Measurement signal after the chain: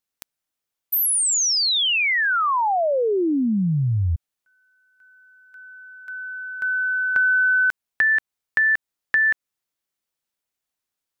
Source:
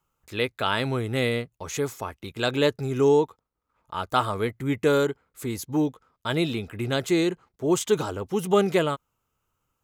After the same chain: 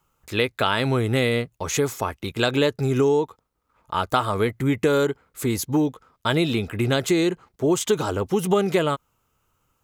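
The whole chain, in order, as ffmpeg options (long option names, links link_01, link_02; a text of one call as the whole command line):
ffmpeg -i in.wav -af "acompressor=threshold=-25dB:ratio=4,volume=7.5dB" out.wav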